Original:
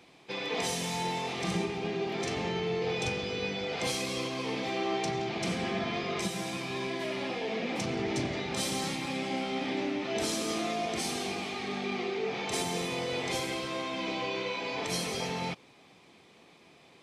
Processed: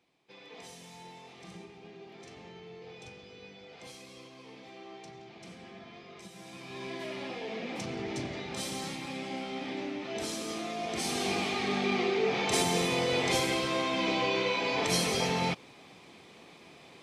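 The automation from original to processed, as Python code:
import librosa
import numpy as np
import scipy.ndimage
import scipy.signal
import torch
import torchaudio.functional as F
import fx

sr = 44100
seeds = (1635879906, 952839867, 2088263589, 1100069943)

y = fx.gain(x, sr, db=fx.line((6.23, -16.5), (6.92, -4.5), (10.72, -4.5), (11.35, 4.5)))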